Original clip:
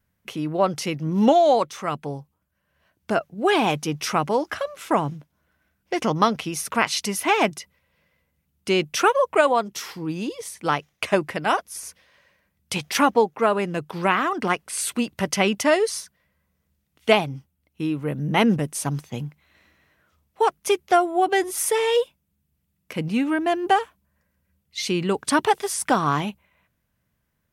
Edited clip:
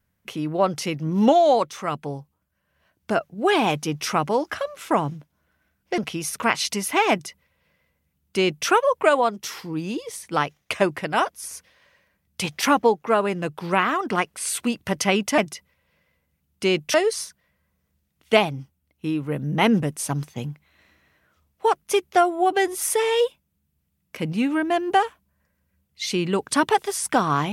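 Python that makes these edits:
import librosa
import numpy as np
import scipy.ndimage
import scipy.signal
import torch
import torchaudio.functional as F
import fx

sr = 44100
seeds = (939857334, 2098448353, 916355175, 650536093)

y = fx.edit(x, sr, fx.cut(start_s=5.98, length_s=0.32),
    fx.duplicate(start_s=7.43, length_s=1.56, to_s=15.7), tone=tone)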